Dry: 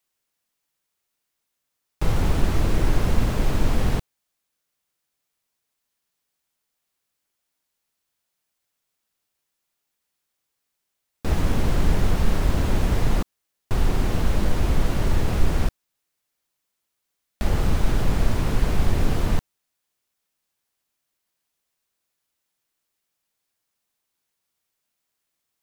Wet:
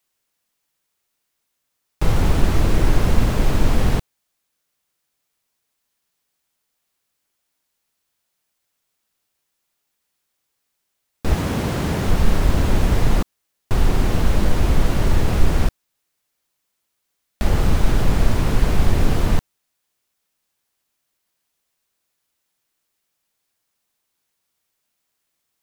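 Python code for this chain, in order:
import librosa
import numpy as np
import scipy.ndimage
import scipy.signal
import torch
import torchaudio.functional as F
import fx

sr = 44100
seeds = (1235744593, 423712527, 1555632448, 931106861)

y = fx.highpass(x, sr, hz=95.0, slope=12, at=(11.35, 12.08))
y = y * 10.0 ** (4.0 / 20.0)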